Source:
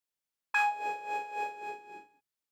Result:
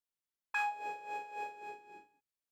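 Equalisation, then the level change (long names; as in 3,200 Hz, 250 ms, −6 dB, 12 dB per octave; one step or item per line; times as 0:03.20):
low-shelf EQ 160 Hz +4 dB
−6.5 dB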